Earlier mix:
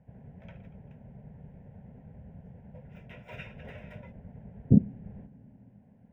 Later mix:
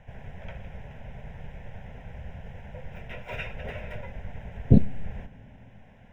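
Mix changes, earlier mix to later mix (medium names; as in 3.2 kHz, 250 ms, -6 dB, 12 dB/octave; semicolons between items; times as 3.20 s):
speech: remove band-pass filter 210 Hz, Q 1.2; background +9.0 dB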